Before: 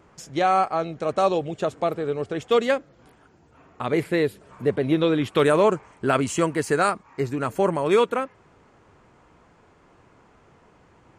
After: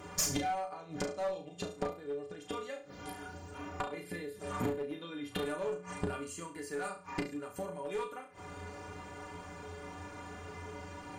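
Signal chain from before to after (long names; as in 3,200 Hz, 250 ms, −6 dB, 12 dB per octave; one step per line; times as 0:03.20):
high-shelf EQ 5,300 Hz +7 dB
mains-hum notches 60/120/180 Hz
in parallel at −2 dB: downward compressor 20 to 1, threshold −27 dBFS, peak gain reduction 14.5 dB
on the sum: gate with flip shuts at −18 dBFS, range −25 dB
stiff-string resonator 87 Hz, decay 0.3 s, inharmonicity 0.03
flutter between parallel walls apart 6 metres, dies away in 0.35 s
asymmetric clip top −45 dBFS
level +12 dB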